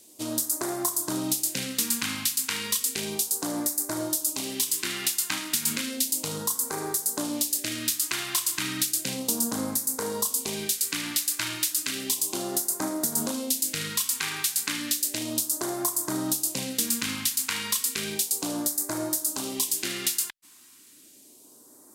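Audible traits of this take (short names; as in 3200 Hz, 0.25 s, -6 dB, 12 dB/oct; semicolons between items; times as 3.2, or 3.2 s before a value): phasing stages 2, 0.33 Hz, lowest notch 510–2700 Hz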